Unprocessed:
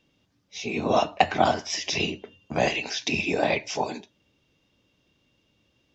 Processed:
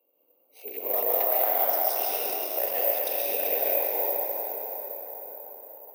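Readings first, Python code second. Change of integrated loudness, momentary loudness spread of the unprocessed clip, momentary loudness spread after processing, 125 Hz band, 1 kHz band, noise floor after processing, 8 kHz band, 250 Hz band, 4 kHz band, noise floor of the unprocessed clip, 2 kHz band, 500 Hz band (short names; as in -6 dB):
+1.0 dB, 12 LU, 16 LU, under -25 dB, -5.5 dB, -67 dBFS, n/a, -16.0 dB, -10.5 dB, -70 dBFS, -10.5 dB, -1.5 dB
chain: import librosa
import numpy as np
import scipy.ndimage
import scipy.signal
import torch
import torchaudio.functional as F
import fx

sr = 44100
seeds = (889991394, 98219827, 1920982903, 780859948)

p1 = fx.wiener(x, sr, points=25)
p2 = fx.ladder_highpass(p1, sr, hz=450.0, resonance_pct=55)
p3 = fx.high_shelf(p2, sr, hz=6700.0, db=8.0)
p4 = np.clip(p3, -10.0 ** (-20.5 / 20.0), 10.0 ** (-20.5 / 20.0))
p5 = p4 + fx.echo_wet_highpass(p4, sr, ms=392, feedback_pct=35, hz=4600.0, wet_db=-5, dry=0)
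p6 = fx.rev_plate(p5, sr, seeds[0], rt60_s=3.8, hf_ratio=0.5, predelay_ms=110, drr_db=-7.5)
p7 = (np.kron(scipy.signal.resample_poly(p6, 1, 3), np.eye(3)[0]) * 3)[:len(p6)]
p8 = fx.band_squash(p7, sr, depth_pct=40)
y = F.gain(torch.from_numpy(p8), -6.0).numpy()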